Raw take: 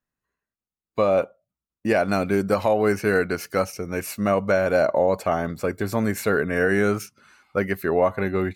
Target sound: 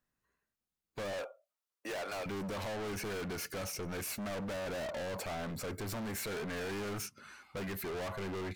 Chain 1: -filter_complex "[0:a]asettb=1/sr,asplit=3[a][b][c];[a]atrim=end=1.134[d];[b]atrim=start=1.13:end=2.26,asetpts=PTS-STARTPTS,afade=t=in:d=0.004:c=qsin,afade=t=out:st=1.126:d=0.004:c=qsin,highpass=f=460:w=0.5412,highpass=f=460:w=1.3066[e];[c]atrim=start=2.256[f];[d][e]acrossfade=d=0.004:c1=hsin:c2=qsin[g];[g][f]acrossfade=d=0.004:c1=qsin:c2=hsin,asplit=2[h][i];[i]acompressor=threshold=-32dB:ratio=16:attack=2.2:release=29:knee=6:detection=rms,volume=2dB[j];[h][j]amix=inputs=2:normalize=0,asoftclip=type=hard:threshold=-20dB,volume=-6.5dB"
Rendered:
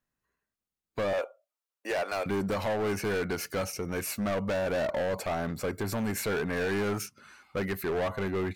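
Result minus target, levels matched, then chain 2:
hard clip: distortion -5 dB
-filter_complex "[0:a]asettb=1/sr,asplit=3[a][b][c];[a]atrim=end=1.134[d];[b]atrim=start=1.13:end=2.26,asetpts=PTS-STARTPTS,afade=t=in:d=0.004:c=qsin,afade=t=out:st=1.126:d=0.004:c=qsin,highpass=f=460:w=0.5412,highpass=f=460:w=1.3066[e];[c]atrim=start=2.256[f];[d][e]acrossfade=d=0.004:c1=hsin:c2=qsin[g];[g][f]acrossfade=d=0.004:c1=qsin:c2=hsin,asplit=2[h][i];[i]acompressor=threshold=-32dB:ratio=16:attack=2.2:release=29:knee=6:detection=rms,volume=2dB[j];[h][j]amix=inputs=2:normalize=0,asoftclip=type=hard:threshold=-31dB,volume=-6.5dB"

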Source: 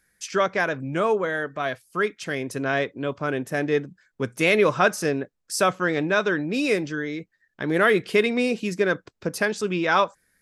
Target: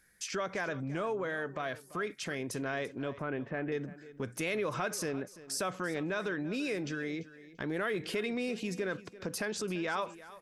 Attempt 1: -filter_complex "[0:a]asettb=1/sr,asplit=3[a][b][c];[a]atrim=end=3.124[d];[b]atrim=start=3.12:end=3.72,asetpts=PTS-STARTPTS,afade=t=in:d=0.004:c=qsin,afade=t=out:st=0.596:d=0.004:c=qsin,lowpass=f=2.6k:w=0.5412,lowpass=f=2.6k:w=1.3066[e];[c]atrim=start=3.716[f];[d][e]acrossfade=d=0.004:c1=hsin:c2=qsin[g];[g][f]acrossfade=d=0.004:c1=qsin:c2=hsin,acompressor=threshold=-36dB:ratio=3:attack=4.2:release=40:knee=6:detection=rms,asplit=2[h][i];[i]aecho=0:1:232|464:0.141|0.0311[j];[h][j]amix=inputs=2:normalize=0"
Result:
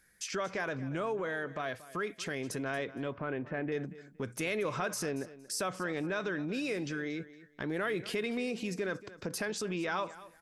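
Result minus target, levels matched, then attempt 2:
echo 0.108 s early
-filter_complex "[0:a]asettb=1/sr,asplit=3[a][b][c];[a]atrim=end=3.124[d];[b]atrim=start=3.12:end=3.72,asetpts=PTS-STARTPTS,afade=t=in:d=0.004:c=qsin,afade=t=out:st=0.596:d=0.004:c=qsin,lowpass=f=2.6k:w=0.5412,lowpass=f=2.6k:w=1.3066[e];[c]atrim=start=3.716[f];[d][e]acrossfade=d=0.004:c1=hsin:c2=qsin[g];[g][f]acrossfade=d=0.004:c1=qsin:c2=hsin,acompressor=threshold=-36dB:ratio=3:attack=4.2:release=40:knee=6:detection=rms,asplit=2[h][i];[i]aecho=0:1:340|680:0.141|0.0311[j];[h][j]amix=inputs=2:normalize=0"

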